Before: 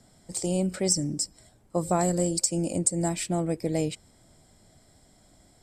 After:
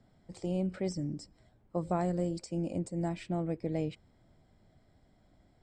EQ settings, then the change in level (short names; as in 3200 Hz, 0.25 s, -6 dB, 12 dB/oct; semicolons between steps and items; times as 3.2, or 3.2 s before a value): LPF 3000 Hz 12 dB/oct; low shelf 240 Hz +3.5 dB; -7.5 dB